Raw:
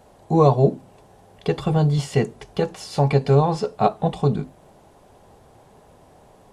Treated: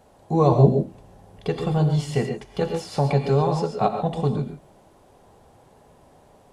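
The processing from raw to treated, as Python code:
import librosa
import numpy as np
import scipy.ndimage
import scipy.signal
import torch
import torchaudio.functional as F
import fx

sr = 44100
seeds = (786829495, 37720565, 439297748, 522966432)

y = fx.low_shelf(x, sr, hz=240.0, db=10.0, at=(0.52, 1.48))
y = fx.rev_gated(y, sr, seeds[0], gate_ms=160, shape='rising', drr_db=5.5)
y = fx.band_squash(y, sr, depth_pct=40, at=(2.61, 3.85))
y = y * librosa.db_to_amplitude(-3.5)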